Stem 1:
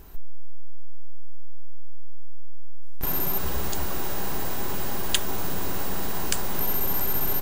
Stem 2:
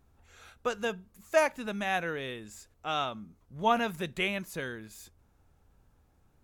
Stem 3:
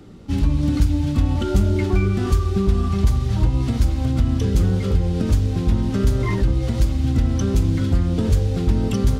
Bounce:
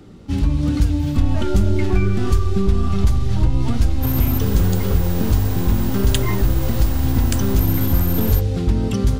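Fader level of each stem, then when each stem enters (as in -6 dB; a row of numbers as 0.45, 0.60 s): -0.5, -12.0, +0.5 dB; 1.00, 0.00, 0.00 s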